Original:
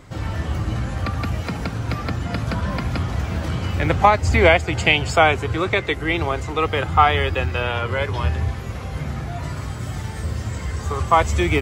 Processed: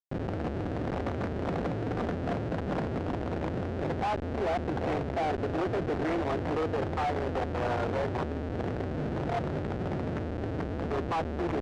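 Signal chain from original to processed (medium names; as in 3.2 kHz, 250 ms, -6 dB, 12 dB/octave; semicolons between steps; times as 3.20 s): CVSD coder 16 kbps; high-pass 50 Hz 12 dB/octave; on a send: thinning echo 355 ms, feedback 45%, high-pass 860 Hz, level -13 dB; on the sum: level rider gain up to 6.5 dB; peaking EQ 730 Hz +7 dB 0.21 oct; compression 16:1, threshold -18 dBFS, peak gain reduction 13 dB; hum notches 60/120 Hz; Schmitt trigger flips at -27.5 dBFS; overdrive pedal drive 34 dB, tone 1.3 kHz, clips at -18 dBFS; distance through air 61 m; trim -5.5 dB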